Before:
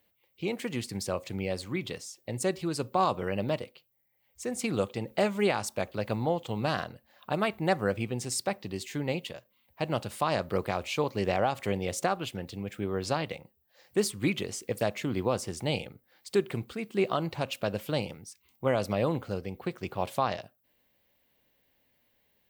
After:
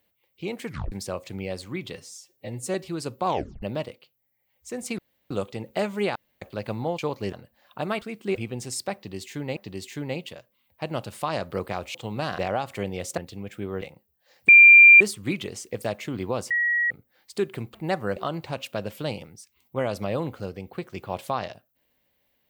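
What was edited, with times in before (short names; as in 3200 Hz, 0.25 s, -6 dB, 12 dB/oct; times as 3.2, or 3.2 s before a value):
0.65 tape stop 0.27 s
1.95–2.48 stretch 1.5×
3 tape stop 0.36 s
4.72 insert room tone 0.32 s
5.57–5.83 room tone
6.4–6.84 swap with 10.93–11.27
7.53–7.95 swap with 16.71–17.05
8.55–9.16 loop, 2 plays
12.06–12.38 cut
13.02–13.3 cut
13.97 add tone 2380 Hz -7 dBFS 0.52 s
15.47–15.87 bleep 1910 Hz -20 dBFS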